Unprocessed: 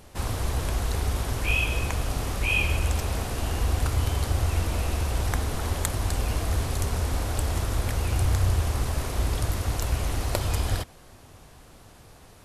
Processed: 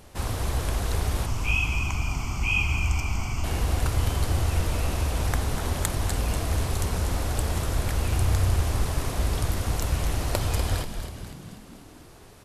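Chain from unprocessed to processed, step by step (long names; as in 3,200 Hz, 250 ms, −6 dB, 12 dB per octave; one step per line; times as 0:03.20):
0:01.26–0:03.44: phaser with its sweep stopped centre 2,600 Hz, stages 8
echo with shifted repeats 244 ms, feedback 56%, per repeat −68 Hz, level −9 dB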